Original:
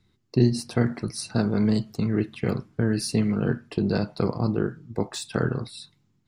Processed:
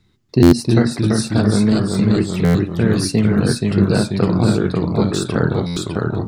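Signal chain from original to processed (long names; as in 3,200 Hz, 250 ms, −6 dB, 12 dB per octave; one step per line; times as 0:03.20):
delay with pitch and tempo change per echo 290 ms, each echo −1 semitone, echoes 3
buffer that repeats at 0:00.42/0:02.44/0:05.66, samples 512, times 8
level +6.5 dB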